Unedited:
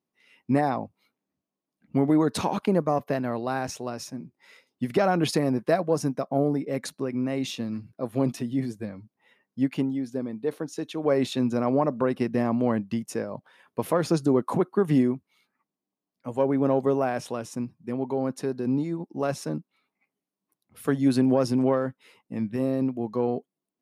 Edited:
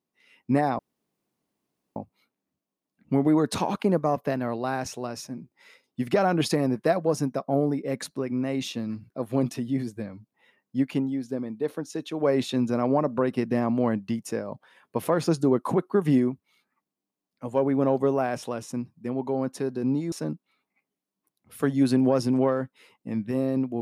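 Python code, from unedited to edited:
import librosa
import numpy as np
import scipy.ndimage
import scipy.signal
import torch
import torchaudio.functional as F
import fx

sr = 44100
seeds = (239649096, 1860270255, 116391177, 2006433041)

y = fx.edit(x, sr, fx.insert_room_tone(at_s=0.79, length_s=1.17),
    fx.cut(start_s=18.95, length_s=0.42), tone=tone)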